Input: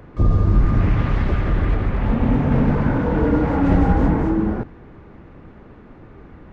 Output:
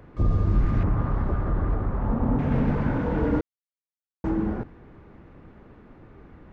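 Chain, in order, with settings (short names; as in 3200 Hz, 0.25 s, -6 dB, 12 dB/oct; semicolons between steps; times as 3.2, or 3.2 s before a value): 0.83–2.39 resonant high shelf 1700 Hz -11.5 dB, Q 1.5; 3.41–4.24 mute; gain -6 dB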